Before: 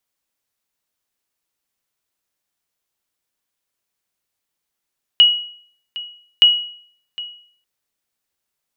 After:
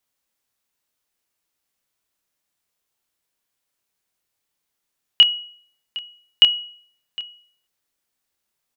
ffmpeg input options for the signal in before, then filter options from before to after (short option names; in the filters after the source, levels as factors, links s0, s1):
-f lavfi -i "aevalsrc='0.668*(sin(2*PI*2910*mod(t,1.22))*exp(-6.91*mod(t,1.22)/0.56)+0.119*sin(2*PI*2910*max(mod(t,1.22)-0.76,0))*exp(-6.91*max(mod(t,1.22)-0.76,0)/0.56))':d=2.44:s=44100"
-filter_complex "[0:a]asplit=2[s0][s1];[s1]adelay=28,volume=0.531[s2];[s0][s2]amix=inputs=2:normalize=0"